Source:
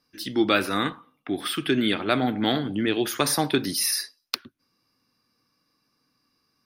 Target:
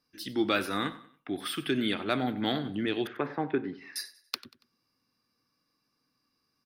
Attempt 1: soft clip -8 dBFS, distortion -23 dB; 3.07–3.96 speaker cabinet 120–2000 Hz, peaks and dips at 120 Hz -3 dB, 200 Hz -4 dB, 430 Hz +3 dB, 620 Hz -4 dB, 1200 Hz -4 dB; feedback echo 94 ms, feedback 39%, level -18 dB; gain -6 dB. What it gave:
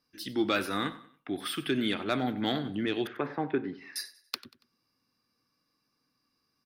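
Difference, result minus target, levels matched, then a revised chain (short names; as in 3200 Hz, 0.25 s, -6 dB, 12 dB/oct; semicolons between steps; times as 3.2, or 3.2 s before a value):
soft clip: distortion +12 dB
soft clip -1 dBFS, distortion -35 dB; 3.07–3.96 speaker cabinet 120–2000 Hz, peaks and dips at 120 Hz -3 dB, 200 Hz -4 dB, 430 Hz +3 dB, 620 Hz -4 dB, 1200 Hz -4 dB; feedback echo 94 ms, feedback 39%, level -18 dB; gain -6 dB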